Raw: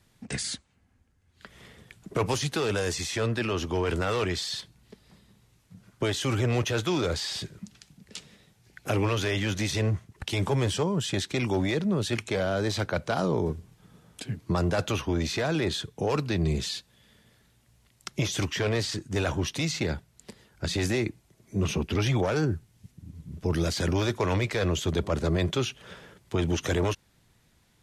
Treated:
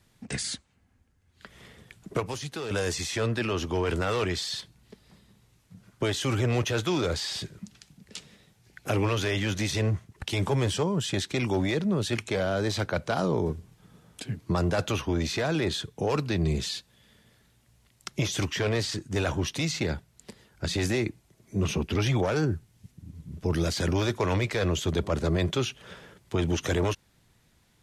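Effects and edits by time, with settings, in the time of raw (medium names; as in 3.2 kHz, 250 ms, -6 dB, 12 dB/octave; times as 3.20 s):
2.20–2.71 s: gain -7 dB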